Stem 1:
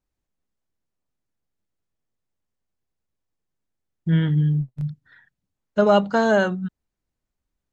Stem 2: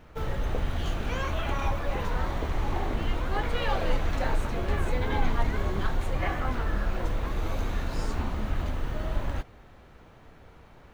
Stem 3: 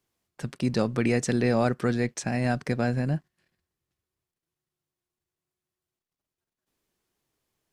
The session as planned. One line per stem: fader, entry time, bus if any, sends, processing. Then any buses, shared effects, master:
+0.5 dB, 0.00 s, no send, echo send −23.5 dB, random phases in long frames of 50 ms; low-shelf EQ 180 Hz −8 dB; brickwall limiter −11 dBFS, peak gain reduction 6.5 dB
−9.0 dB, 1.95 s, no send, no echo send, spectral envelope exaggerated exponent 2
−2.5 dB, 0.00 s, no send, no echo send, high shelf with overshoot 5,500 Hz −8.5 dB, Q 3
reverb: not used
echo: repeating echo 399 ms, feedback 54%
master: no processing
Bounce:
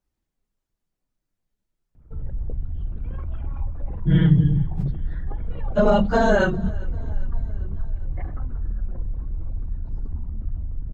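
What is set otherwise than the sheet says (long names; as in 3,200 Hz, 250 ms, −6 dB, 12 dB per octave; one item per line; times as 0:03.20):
stem 3: muted
master: extra low-shelf EQ 240 Hz +11 dB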